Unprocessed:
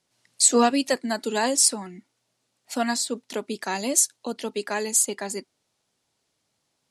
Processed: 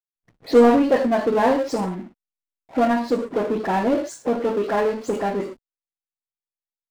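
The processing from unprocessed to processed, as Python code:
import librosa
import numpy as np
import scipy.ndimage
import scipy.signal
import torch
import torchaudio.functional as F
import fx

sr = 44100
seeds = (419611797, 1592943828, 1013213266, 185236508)

y = fx.spec_delay(x, sr, highs='late', ms=129)
y = scipy.signal.sosfilt(scipy.signal.butter(2, 1100.0, 'lowpass', fs=sr, output='sos'), y)
y = fx.rev_gated(y, sr, seeds[0], gate_ms=150, shape='falling', drr_db=3.0)
y = fx.power_curve(y, sr, exponent=0.7)
y = fx.backlash(y, sr, play_db=-43.0)
y = y * librosa.db_to_amplitude(2.5)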